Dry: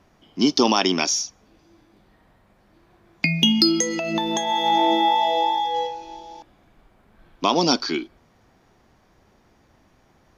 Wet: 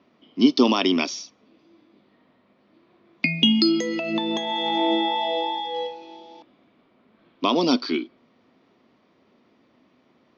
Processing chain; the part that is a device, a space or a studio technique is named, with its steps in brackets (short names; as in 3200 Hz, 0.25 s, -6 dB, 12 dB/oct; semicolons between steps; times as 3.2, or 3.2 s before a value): kitchen radio (speaker cabinet 220–4300 Hz, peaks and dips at 250 Hz +7 dB, 810 Hz -8 dB, 1600 Hz -8 dB)